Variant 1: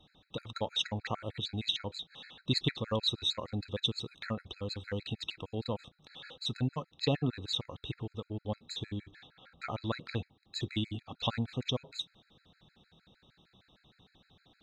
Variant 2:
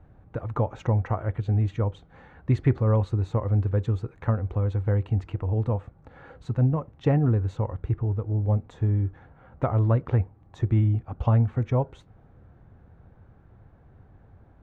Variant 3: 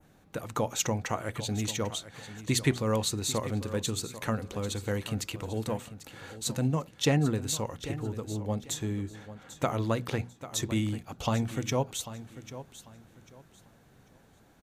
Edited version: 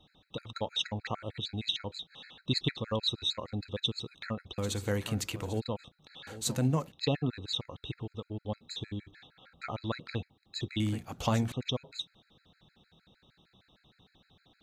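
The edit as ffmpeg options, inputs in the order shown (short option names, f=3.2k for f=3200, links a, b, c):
-filter_complex "[2:a]asplit=3[a][b][c];[0:a]asplit=4[d][e][f][g];[d]atrim=end=4.582[h];[a]atrim=start=4.578:end=5.602[i];[e]atrim=start=5.598:end=6.272[j];[b]atrim=start=6.268:end=6.922[k];[f]atrim=start=6.918:end=10.802[l];[c]atrim=start=10.798:end=11.522[m];[g]atrim=start=11.518[n];[h][i]acrossfade=d=0.004:c1=hsin:c2=hsin[o];[o][j]acrossfade=d=0.004:c1=hsin:c2=hsin[p];[p][k]acrossfade=d=0.004:c1=hsin:c2=hsin[q];[q][l]acrossfade=d=0.004:c1=hsin:c2=hsin[r];[r][m]acrossfade=d=0.004:c1=hsin:c2=hsin[s];[s][n]acrossfade=d=0.004:c1=hsin:c2=hsin"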